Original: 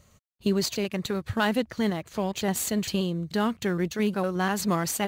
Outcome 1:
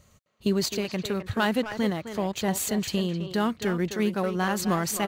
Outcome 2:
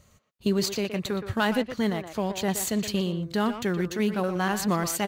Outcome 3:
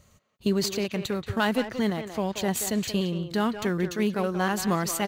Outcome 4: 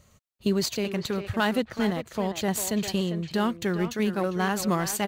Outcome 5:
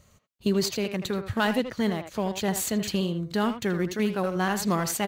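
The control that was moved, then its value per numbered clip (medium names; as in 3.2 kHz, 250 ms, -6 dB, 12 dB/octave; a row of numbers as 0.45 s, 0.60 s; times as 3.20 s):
speakerphone echo, time: 260 ms, 120 ms, 180 ms, 400 ms, 80 ms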